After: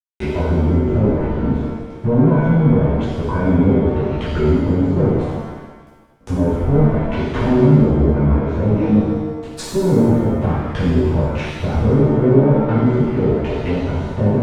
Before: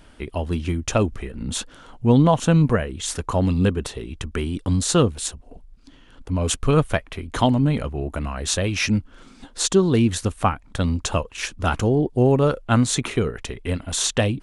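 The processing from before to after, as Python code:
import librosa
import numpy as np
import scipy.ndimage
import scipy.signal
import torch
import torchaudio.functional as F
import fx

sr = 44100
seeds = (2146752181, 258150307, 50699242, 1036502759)

y = fx.fuzz(x, sr, gain_db=26.0, gate_db=-35.0)
y = fx.env_lowpass_down(y, sr, base_hz=540.0, full_db=-16.0)
y = fx.rev_shimmer(y, sr, seeds[0], rt60_s=1.2, semitones=7, shimmer_db=-8, drr_db=-10.5)
y = F.gain(torch.from_numpy(y), -8.0).numpy()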